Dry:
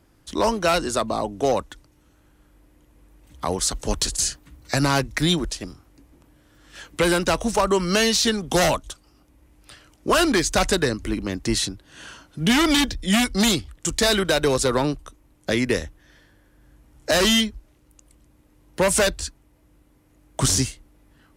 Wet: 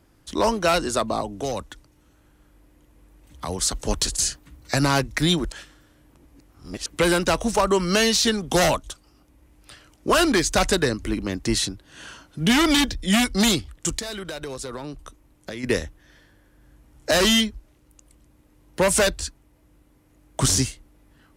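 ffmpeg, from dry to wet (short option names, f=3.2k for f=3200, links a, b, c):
-filter_complex "[0:a]asettb=1/sr,asplit=3[a][b][c];[a]atrim=end=1.214[d];[b]atrim=start=1.21:end=3.71,asetpts=PTS-STARTPTS,afade=t=in:d=0.004:c=qsin,afade=t=out:st=2.496:d=0.004:c=qsin,acrossover=split=180|3000[e][f][g];[f]acompressor=threshold=-30dB:ratio=2:attack=3.2:release=140:knee=2.83:detection=peak[h];[e][h][g]amix=inputs=3:normalize=0[i];[c]atrim=start=3.706[j];[d][i]acrossfade=d=0.004:c1=hsin:c2=qsin[k];[k][j]acrossfade=d=0.004:c1=qsin:c2=hsin,asplit=3[l][m][n];[l]afade=t=out:st=13.98:d=0.02[o];[m]acompressor=threshold=-31dB:ratio=5:attack=3.2:release=140:knee=1:detection=peak,afade=t=in:st=13.98:d=0.02,afade=t=out:st=15.63:d=0.02[p];[n]afade=t=in:st=15.63:d=0.02[q];[o][p][q]amix=inputs=3:normalize=0,asplit=3[r][s][t];[r]atrim=end=5.522[u];[s]atrim=start=5.518:end=6.862,asetpts=PTS-STARTPTS,areverse[v];[t]atrim=start=6.858[w];[u][v]acrossfade=d=0.004:c1=hsin:c2=hsin[x];[x][w]acrossfade=d=0.004:c1=hsin:c2=hsin"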